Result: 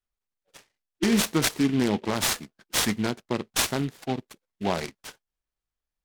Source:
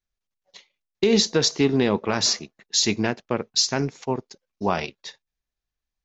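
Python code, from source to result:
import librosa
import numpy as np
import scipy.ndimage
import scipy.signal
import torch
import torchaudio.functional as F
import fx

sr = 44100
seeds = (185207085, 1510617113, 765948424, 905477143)

y = fx.formant_shift(x, sr, semitones=-3)
y = fx.noise_mod_delay(y, sr, seeds[0], noise_hz=2300.0, depth_ms=0.065)
y = F.gain(torch.from_numpy(y), -3.0).numpy()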